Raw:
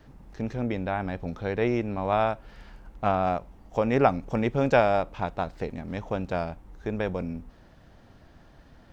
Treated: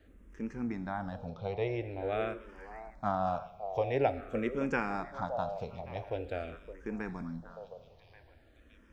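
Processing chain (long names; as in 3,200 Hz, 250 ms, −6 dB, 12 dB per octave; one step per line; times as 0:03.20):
0:01.28–0:01.81: low-pass filter 5,400 Hz 24 dB per octave
echo through a band-pass that steps 566 ms, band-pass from 550 Hz, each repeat 1.4 octaves, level −6.5 dB
reverb whose tail is shaped and stops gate 350 ms falling, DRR 12 dB
frequency shifter mixed with the dry sound −0.47 Hz
level −5.5 dB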